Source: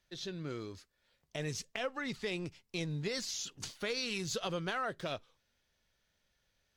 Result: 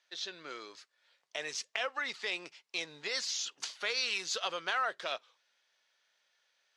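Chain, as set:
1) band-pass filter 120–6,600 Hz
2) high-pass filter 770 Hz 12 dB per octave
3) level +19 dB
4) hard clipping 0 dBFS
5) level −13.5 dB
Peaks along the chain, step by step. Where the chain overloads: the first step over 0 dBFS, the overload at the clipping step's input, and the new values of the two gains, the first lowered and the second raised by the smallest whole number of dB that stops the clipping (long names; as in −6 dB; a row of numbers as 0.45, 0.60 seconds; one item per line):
−22.0, −22.5, −3.5, −3.5, −17.0 dBFS
no step passes full scale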